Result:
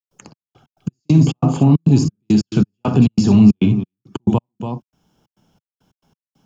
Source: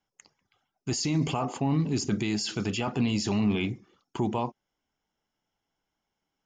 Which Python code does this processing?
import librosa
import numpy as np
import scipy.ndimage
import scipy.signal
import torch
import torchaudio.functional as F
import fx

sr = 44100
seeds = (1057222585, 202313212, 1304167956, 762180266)

p1 = fx.peak_eq(x, sr, hz=2000.0, db=-14.5, octaves=0.22)
p2 = p1 + fx.echo_multitap(p1, sr, ms=(61, 284), db=(-8.5, -12.0), dry=0)
p3 = fx.step_gate(p2, sr, bpm=137, pattern='.xx..x.x..xx.xxx', floor_db=-60.0, edge_ms=4.5)
p4 = fx.peak_eq(p3, sr, hz=150.0, db=13.5, octaves=2.2)
p5 = fx.band_squash(p4, sr, depth_pct=40)
y = p5 * 10.0 ** (5.0 / 20.0)